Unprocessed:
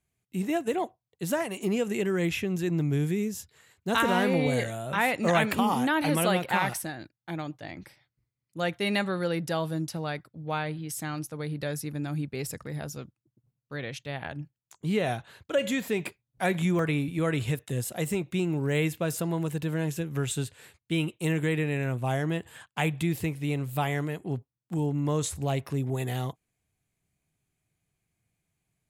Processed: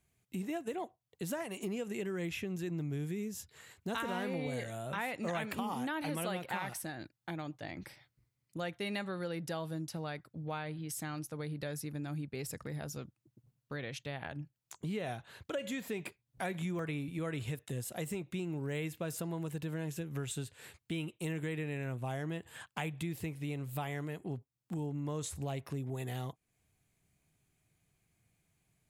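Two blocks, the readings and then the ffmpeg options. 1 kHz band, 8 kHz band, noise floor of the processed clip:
-11.0 dB, -8.0 dB, -83 dBFS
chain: -af "acompressor=threshold=0.00501:ratio=2.5,volume=1.5"

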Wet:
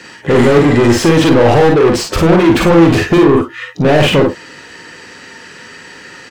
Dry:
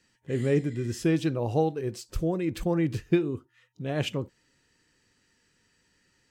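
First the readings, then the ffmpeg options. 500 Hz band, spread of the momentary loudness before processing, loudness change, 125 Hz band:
+20.0 dB, 9 LU, +19.0 dB, +15.5 dB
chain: -filter_complex "[0:a]asplit=2[s0][s1];[s1]highpass=f=720:p=1,volume=70.8,asoftclip=type=tanh:threshold=0.316[s2];[s0][s2]amix=inputs=2:normalize=0,lowpass=f=1400:p=1,volume=0.501,aecho=1:1:42|54:0.501|0.531,acontrast=81,volume=1.26"

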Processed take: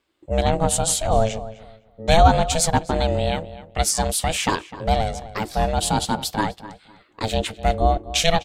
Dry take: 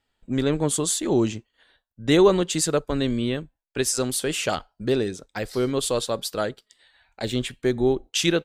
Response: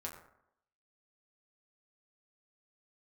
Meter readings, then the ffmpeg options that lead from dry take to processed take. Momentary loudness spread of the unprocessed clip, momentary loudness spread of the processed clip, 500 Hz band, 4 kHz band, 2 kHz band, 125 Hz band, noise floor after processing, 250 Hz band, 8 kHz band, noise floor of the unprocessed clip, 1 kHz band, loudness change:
9 LU, 10 LU, 0.0 dB, +3.0 dB, +3.5 dB, +5.5 dB, -58 dBFS, -3.0 dB, +3.0 dB, -80 dBFS, +12.5 dB, +2.5 dB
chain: -filter_complex "[0:a]aeval=exprs='val(0)*sin(2*PI*330*n/s)':c=same,asplit=2[s0][s1];[s1]adelay=254,lowpass=f=2400:p=1,volume=0.178,asplit=2[s2][s3];[s3]adelay=254,lowpass=f=2400:p=1,volume=0.25,asplit=2[s4][s5];[s5]adelay=254,lowpass=f=2400:p=1,volume=0.25[s6];[s0][s2][s4][s6]amix=inputs=4:normalize=0,volume=2"

